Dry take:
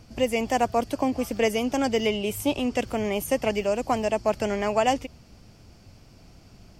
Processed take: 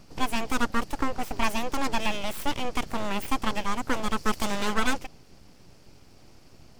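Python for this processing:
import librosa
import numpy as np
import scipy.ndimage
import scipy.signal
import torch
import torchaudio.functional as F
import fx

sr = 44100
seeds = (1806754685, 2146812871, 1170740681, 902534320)

y = fx.high_shelf(x, sr, hz=2700.0, db=9.5, at=(4.17, 4.74))
y = np.abs(y)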